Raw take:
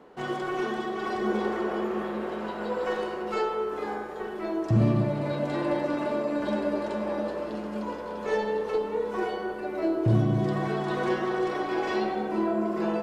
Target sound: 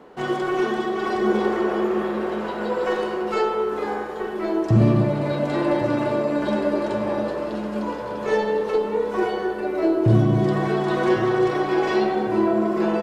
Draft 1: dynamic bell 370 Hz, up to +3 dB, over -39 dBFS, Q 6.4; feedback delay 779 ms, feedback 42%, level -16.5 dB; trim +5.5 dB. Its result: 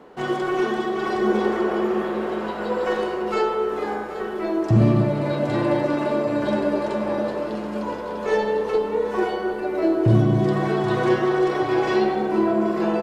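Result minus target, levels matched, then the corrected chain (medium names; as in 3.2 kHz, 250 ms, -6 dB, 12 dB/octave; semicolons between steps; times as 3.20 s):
echo 325 ms early
dynamic bell 370 Hz, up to +3 dB, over -39 dBFS, Q 6.4; feedback delay 1104 ms, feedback 42%, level -16.5 dB; trim +5.5 dB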